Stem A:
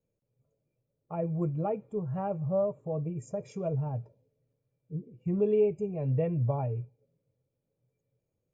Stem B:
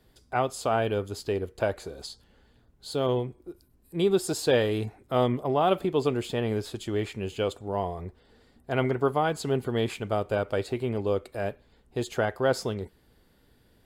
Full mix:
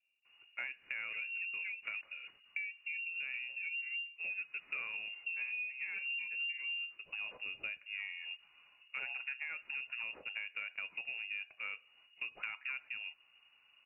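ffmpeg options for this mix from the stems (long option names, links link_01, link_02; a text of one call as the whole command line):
ffmpeg -i stem1.wav -i stem2.wav -filter_complex "[0:a]equalizer=frequency=120:width=7.4:gain=10.5,bandreject=frequency=2400:width=25,volume=-1.5dB,asplit=3[link_01][link_02][link_03];[link_01]atrim=end=2.01,asetpts=PTS-STARTPTS,afade=type=out:start_time=2.006:duration=0.004:curve=hsin[link_04];[link_02]atrim=start=2.01:end=2.56,asetpts=PTS-STARTPTS,volume=0[link_05];[link_03]atrim=start=2.56,asetpts=PTS-STARTPTS,afade=type=in:duration=0.004:curve=hsin[link_06];[link_04][link_05][link_06]concat=n=3:v=0:a=1,asplit=2[link_07][link_08];[1:a]asoftclip=type=tanh:threshold=-13dB,adelay=250,volume=-5dB[link_09];[link_08]apad=whole_len=622238[link_10];[link_09][link_10]sidechaincompress=threshold=-30dB:ratio=10:attack=49:release=1060[link_11];[link_07][link_11]amix=inputs=2:normalize=0,lowpass=frequency=2500:width_type=q:width=0.5098,lowpass=frequency=2500:width_type=q:width=0.6013,lowpass=frequency=2500:width_type=q:width=0.9,lowpass=frequency=2500:width_type=q:width=2.563,afreqshift=-2900,acompressor=threshold=-39dB:ratio=6" out.wav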